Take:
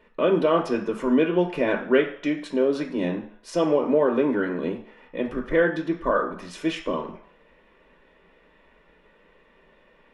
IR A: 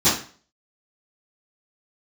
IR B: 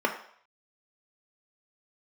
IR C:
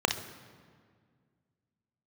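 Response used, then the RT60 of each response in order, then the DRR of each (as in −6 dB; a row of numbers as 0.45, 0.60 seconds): B; 0.40, 0.60, 1.9 seconds; −18.5, 2.0, 5.0 decibels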